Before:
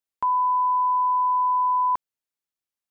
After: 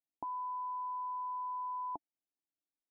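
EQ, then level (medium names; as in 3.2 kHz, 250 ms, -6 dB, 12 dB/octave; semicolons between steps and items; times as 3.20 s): cascade formant filter u; peaking EQ 680 Hz +12.5 dB 0.3 oct; +4.0 dB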